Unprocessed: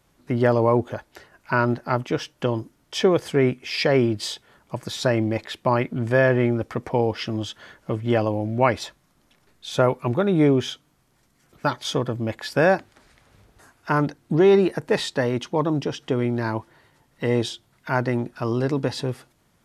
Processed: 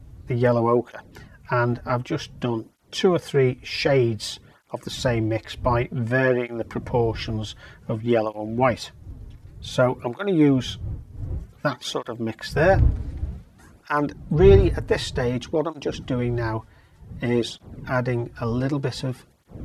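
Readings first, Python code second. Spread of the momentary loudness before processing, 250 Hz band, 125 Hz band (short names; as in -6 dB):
12 LU, -1.0 dB, +1.5 dB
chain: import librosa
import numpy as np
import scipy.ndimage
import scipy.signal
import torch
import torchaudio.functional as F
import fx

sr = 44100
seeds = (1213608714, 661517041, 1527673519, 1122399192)

y = fx.dmg_wind(x, sr, seeds[0], corner_hz=91.0, level_db=-30.0)
y = fx.flanger_cancel(y, sr, hz=0.54, depth_ms=6.0)
y = F.gain(torch.from_numpy(y), 2.0).numpy()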